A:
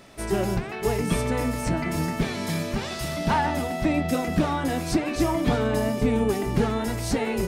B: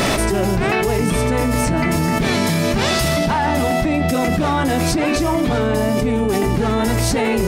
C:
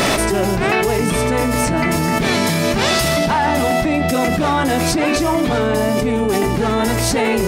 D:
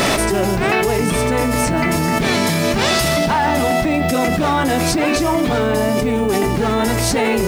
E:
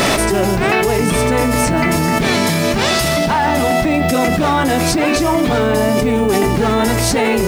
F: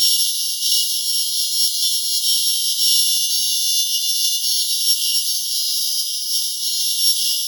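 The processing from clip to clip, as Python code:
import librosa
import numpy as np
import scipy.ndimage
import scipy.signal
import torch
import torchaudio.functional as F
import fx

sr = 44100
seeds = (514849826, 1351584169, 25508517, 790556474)

y1 = fx.env_flatten(x, sr, amount_pct=100)
y2 = fx.low_shelf(y1, sr, hz=190.0, db=-6.0)
y2 = y2 * librosa.db_to_amplitude(2.5)
y3 = fx.dmg_noise_colour(y2, sr, seeds[0], colour='blue', level_db=-50.0)
y4 = fx.rider(y3, sr, range_db=10, speed_s=0.5)
y4 = y4 * librosa.db_to_amplitude(2.0)
y5 = np.r_[np.sort(y4[:len(y4) // 8 * 8].reshape(-1, 8), axis=1).ravel(), y4[len(y4) // 8 * 8:]]
y5 = fx.brickwall_highpass(y5, sr, low_hz=2800.0)
y5 = fx.rev_gated(y5, sr, seeds[1], gate_ms=220, shape='falling', drr_db=0.5)
y5 = y5 * librosa.db_to_amplitude(1.5)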